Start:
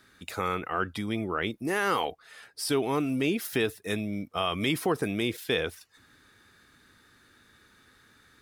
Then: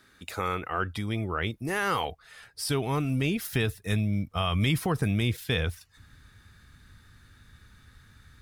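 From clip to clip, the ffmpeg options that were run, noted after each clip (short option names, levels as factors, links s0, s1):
-af "asubboost=boost=10.5:cutoff=110"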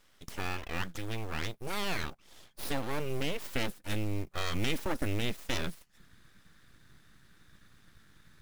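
-af "aeval=exprs='abs(val(0))':c=same,acrusher=bits=6:mode=log:mix=0:aa=0.000001,volume=0.668"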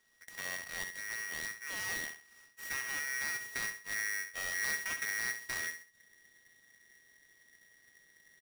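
-af "aecho=1:1:66|132|198:0.335|0.1|0.0301,aeval=exprs='val(0)*sgn(sin(2*PI*1900*n/s))':c=same,volume=0.355"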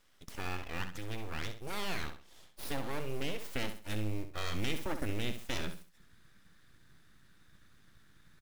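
-af "aeval=exprs='abs(val(0))':c=same,volume=1.78"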